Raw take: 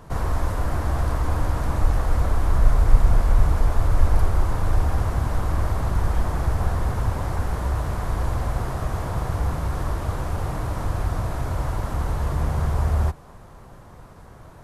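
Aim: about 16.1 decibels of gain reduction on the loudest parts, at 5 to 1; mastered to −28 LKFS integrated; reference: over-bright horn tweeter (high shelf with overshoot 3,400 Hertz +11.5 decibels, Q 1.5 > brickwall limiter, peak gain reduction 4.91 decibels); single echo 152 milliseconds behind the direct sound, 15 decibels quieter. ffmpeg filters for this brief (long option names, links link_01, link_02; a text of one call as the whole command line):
ffmpeg -i in.wav -af "acompressor=threshold=-25dB:ratio=5,highshelf=frequency=3400:width_type=q:width=1.5:gain=11.5,aecho=1:1:152:0.178,volume=4.5dB,alimiter=limit=-16.5dB:level=0:latency=1" out.wav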